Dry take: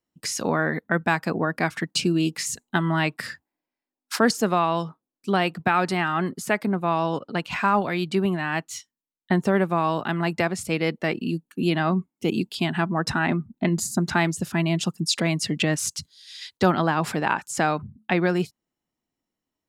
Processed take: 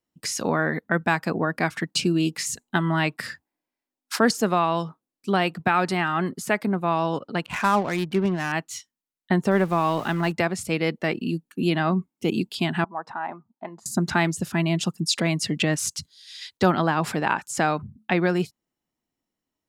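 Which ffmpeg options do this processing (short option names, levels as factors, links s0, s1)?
-filter_complex "[0:a]asettb=1/sr,asplit=3[s0][s1][s2];[s0]atrim=end=7.464[s3];[s1]atrim=start=7.46:end=8.52,asetpts=PTS-STARTPTS,afade=t=in:d=0.004:c=qsin,afade=t=out:st=1.056:d=0.004:c=qsin,adynamicsmooth=sensitivity=4.5:basefreq=570[s4];[s2]atrim=start=8.516[s5];[s3][s4]acrossfade=d=0.004:c1=hsin:c2=qsin[s6];[s6][s5]acrossfade=d=0.004:c1=qsin:c2=hsin,asettb=1/sr,asplit=3[s7][s8][s9];[s7]atrim=end=9.514[s10];[s8]atrim=start=9.51:end=10.32,asetpts=PTS-STARTPTS,afade=t=in:d=0.004:c=qsin,afade=t=out:st=0.806:d=0.004:c=qsin,aeval=exprs='val(0)+0.5*0.0141*sgn(val(0))':c=same[s11];[s9]atrim=start=10.316[s12];[s10][s11]acrossfade=d=0.004:c1=hsin:c2=qsin[s13];[s13][s12]acrossfade=d=0.004:c1=qsin:c2=hsin,asettb=1/sr,asplit=3[s14][s15][s16];[s14]atrim=end=12.844[s17];[s15]atrim=start=12.84:end=13.86,asetpts=PTS-STARTPTS,afade=t=in:d=0.004:c=qsin,afade=t=out:st=1.016:d=0.004:c=qsin,bandpass=f=870:t=q:w=2.8[s18];[s16]atrim=start=13.856[s19];[s17][s18]acrossfade=d=0.004:c1=hsin:c2=qsin[s20];[s20][s19]acrossfade=d=0.004:c1=qsin:c2=hsin"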